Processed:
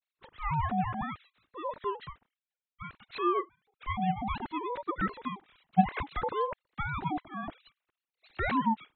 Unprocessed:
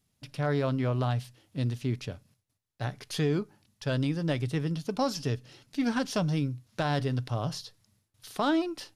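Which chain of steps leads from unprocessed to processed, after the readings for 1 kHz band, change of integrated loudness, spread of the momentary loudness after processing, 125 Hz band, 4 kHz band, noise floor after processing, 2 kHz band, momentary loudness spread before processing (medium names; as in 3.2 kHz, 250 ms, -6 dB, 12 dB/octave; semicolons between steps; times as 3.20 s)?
+6.0 dB, -2.0 dB, 17 LU, -9.0 dB, -9.5 dB, under -85 dBFS, 0.0 dB, 11 LU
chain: formants replaced by sine waves; ring modulator with a swept carrier 620 Hz, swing 25%, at 0.61 Hz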